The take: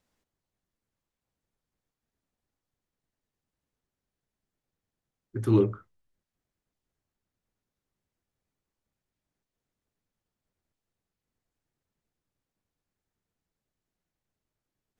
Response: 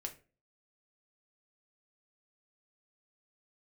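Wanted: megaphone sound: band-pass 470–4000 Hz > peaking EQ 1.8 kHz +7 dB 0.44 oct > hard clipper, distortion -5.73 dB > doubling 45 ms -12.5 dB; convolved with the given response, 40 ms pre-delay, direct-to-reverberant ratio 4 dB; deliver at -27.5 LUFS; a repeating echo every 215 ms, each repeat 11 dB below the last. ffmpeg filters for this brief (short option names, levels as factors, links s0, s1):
-filter_complex "[0:a]aecho=1:1:215|430|645:0.282|0.0789|0.0221,asplit=2[s0][s1];[1:a]atrim=start_sample=2205,adelay=40[s2];[s1][s2]afir=irnorm=-1:irlink=0,volume=0.794[s3];[s0][s3]amix=inputs=2:normalize=0,highpass=470,lowpass=4000,equalizer=f=1800:t=o:w=0.44:g=7,asoftclip=type=hard:threshold=0.0282,asplit=2[s4][s5];[s5]adelay=45,volume=0.237[s6];[s4][s6]amix=inputs=2:normalize=0,volume=2.99"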